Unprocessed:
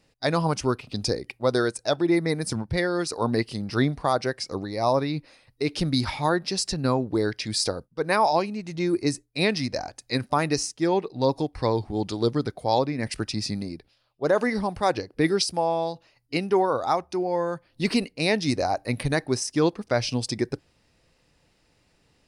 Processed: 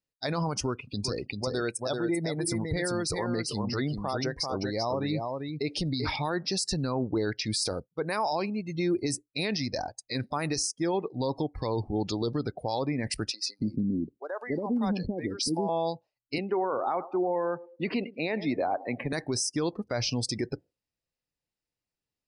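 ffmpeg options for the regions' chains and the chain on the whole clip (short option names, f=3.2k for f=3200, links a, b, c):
-filter_complex "[0:a]asettb=1/sr,asplit=3[a][b][c];[a]atrim=end=0.664[d];[b]atrim=start=0.66:end=6.16,asetpts=PTS-STARTPTS,afade=t=in:d=0.004:c=qsin,afade=t=out:st=5.496:d=0.004:c=qsin,acompressor=threshold=-26dB:ratio=3:attack=3.2:release=140:knee=1:detection=peak,aecho=1:1:390:0.562,atrim=end_sample=242550[e];[c]atrim=start=6.156[f];[d][e]acrossfade=d=0.004:c1=hsin:c2=qsin[g];[g][f]acrossfade=d=0.004:c1=qsin:c2=hsin,asettb=1/sr,asplit=3[h][i][j];[h]atrim=end=13.314[k];[i]atrim=start=13.31:end=15.69,asetpts=PTS-STARTPTS,afade=t=in:d=0.004:c=qsin,afade=t=out:st=2.376:d=0.004:c=qsin,equalizer=f=240:t=o:w=1:g=12,acompressor=threshold=-24dB:ratio=6:attack=3.2:release=140:knee=1:detection=peak,acrossover=split=540[l][m];[l]adelay=280[n];[n][m]amix=inputs=2:normalize=0,atrim=end_sample=104958[o];[j]atrim=start=15.686[p];[k][o]acrossfade=d=0.004:c1=hsin:c2=qsin[q];[q][p]acrossfade=d=0.004:c1=qsin:c2=hsin,asettb=1/sr,asplit=3[r][s][t];[r]atrim=end=16.384[u];[s]atrim=start=16.38:end=19.13,asetpts=PTS-STARTPTS,afade=t=in:d=0.004:c=qsin,afade=t=out:st=2.746:d=0.004:c=qsin,acrossover=split=190 3000:gain=0.178 1 0.126[v][w][x];[v][w][x]amix=inputs=3:normalize=0,aecho=1:1:107|214|321|428:0.1|0.049|0.024|0.0118,atrim=end_sample=121275[y];[t]atrim=start=19.126[z];[u][y]acrossfade=d=0.004:c1=hsin:c2=qsin[aa];[aa][z]acrossfade=d=0.004:c1=qsin:c2=hsin,afftdn=nr=29:nf=-40,highshelf=f=4.6k:g=7,alimiter=limit=-20dB:level=0:latency=1:release=32"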